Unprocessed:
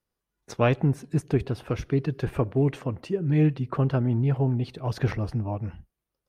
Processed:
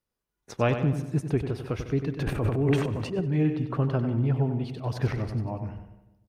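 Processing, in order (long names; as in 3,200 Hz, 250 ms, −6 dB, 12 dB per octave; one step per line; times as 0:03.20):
repeating echo 95 ms, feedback 45%, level −9 dB
0:02.19–0:03.45: transient designer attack −5 dB, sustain +12 dB
feedback echo with a low-pass in the loop 150 ms, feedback 46%, low-pass 1,100 Hz, level −14.5 dB
level −2.5 dB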